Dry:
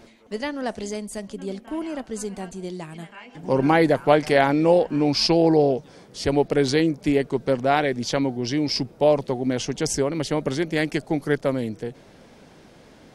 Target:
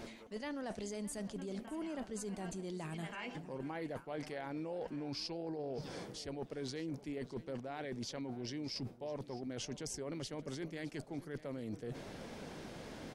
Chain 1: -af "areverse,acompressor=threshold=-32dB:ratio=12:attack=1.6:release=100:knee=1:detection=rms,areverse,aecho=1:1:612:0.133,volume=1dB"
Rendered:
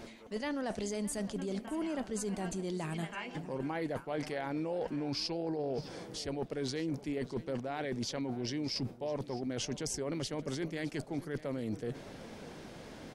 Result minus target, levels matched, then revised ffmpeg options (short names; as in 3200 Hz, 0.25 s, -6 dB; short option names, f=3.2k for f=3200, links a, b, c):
compressor: peak gain reduction -6 dB
-af "areverse,acompressor=threshold=-38.5dB:ratio=12:attack=1.6:release=100:knee=1:detection=rms,areverse,aecho=1:1:612:0.133,volume=1dB"